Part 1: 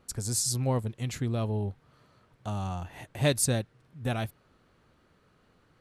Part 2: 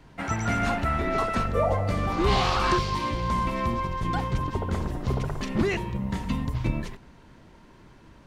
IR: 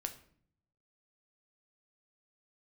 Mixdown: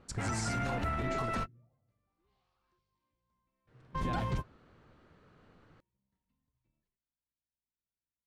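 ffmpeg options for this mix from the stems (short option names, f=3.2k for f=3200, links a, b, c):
-filter_complex "[0:a]lowpass=f=8.8k:w=0.5412,lowpass=f=8.8k:w=1.3066,highshelf=f=4k:g=-11,acompressor=threshold=-35dB:ratio=4,volume=-0.5dB,asplit=3[a][b][c];[a]atrim=end=1.31,asetpts=PTS-STARTPTS,afade=t=out:st=1.306:d=0.004:c=hsin[d];[b]atrim=start=1.31:end=3.67,asetpts=PTS-STARTPTS,volume=0[e];[c]atrim=start=3.67,asetpts=PTS-STARTPTS,afade=t=in:d=0.004:c=hsin[f];[d][e][f]concat=n=3:v=0:a=1,asplit=3[g][h][i];[h]volume=-4.5dB[j];[1:a]aeval=exprs='val(0)+0.00316*(sin(2*PI*60*n/s)+sin(2*PI*2*60*n/s)/2+sin(2*PI*3*60*n/s)/3+sin(2*PI*4*60*n/s)/4+sin(2*PI*5*60*n/s)/5)':c=same,volume=-4dB[k];[i]apad=whole_len=364460[l];[k][l]sidechaingate=range=-52dB:threshold=-55dB:ratio=16:detection=peak[m];[2:a]atrim=start_sample=2205[n];[j][n]afir=irnorm=-1:irlink=0[o];[g][m][o]amix=inputs=3:normalize=0,alimiter=level_in=1.5dB:limit=-24dB:level=0:latency=1:release=41,volume=-1.5dB"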